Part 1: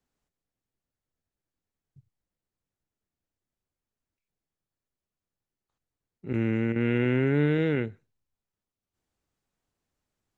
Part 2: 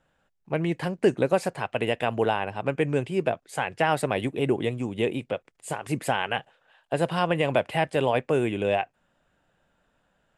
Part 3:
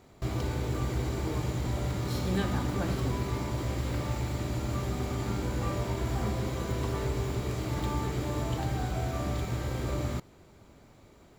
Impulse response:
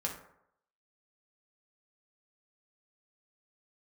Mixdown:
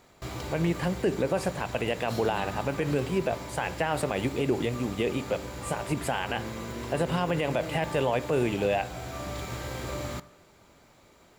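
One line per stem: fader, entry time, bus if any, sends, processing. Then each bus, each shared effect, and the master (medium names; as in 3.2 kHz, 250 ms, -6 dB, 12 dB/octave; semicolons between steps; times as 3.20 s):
-8.0 dB, 0.00 s, no send, compression, threshold -27 dBFS, peak gain reduction 8.5 dB
-2.0 dB, 0.00 s, send -12.5 dB, none
+2.0 dB, 0.00 s, send -12.5 dB, bass shelf 460 Hz -10 dB; auto duck -6 dB, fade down 1.15 s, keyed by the second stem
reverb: on, RT60 0.75 s, pre-delay 3 ms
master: peak limiter -16 dBFS, peak gain reduction 7.5 dB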